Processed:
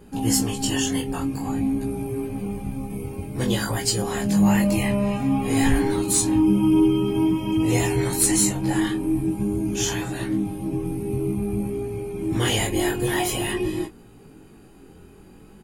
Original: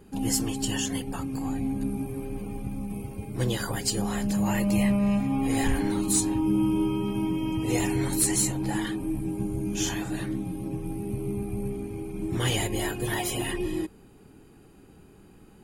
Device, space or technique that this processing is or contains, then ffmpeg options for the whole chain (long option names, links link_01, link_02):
double-tracked vocal: -filter_complex "[0:a]asplit=2[link_01][link_02];[link_02]adelay=25,volume=-11dB[link_03];[link_01][link_03]amix=inputs=2:normalize=0,flanger=delay=17:depth=5.8:speed=0.5,volume=7.5dB"